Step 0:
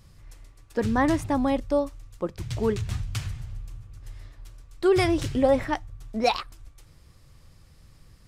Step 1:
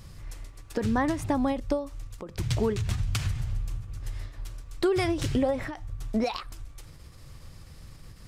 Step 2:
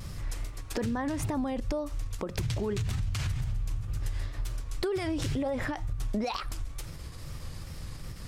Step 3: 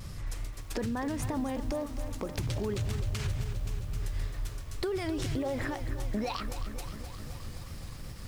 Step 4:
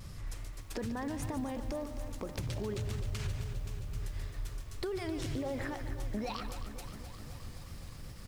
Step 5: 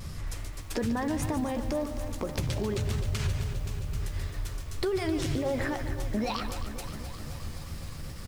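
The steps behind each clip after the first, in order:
downward compressor 5 to 1, threshold −30 dBFS, peak gain reduction 13 dB; every ending faded ahead of time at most 120 dB per second; level +7 dB
brickwall limiter −23.5 dBFS, peak gain reduction 10.5 dB; downward compressor, threshold −34 dBFS, peak gain reduction 7.5 dB; tape wow and flutter 84 cents; level +6.5 dB
feedback echo at a low word length 262 ms, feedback 80%, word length 8 bits, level −11 dB; level −2 dB
single-tap delay 146 ms −11.5 dB; level −4.5 dB
double-tracking delay 13 ms −11 dB; level +7 dB

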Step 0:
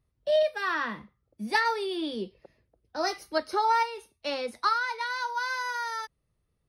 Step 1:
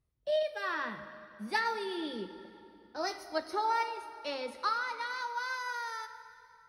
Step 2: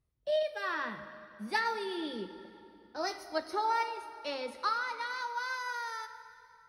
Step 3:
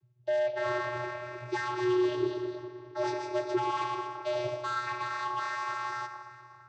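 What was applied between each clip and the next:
dense smooth reverb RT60 2.9 s, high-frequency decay 0.75×, DRR 10 dB; level −6 dB
no processing that can be heard
hard clipping −36 dBFS, distortion −6 dB; delay with pitch and tempo change per echo 327 ms, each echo +1 semitone, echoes 2, each echo −6 dB; channel vocoder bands 16, square 122 Hz; level +8 dB

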